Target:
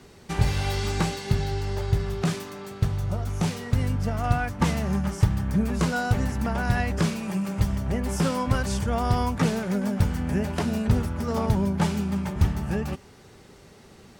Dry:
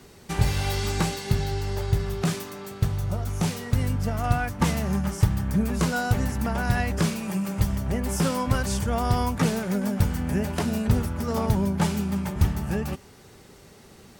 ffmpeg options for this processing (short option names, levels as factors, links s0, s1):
-af "highshelf=f=9900:g=-10"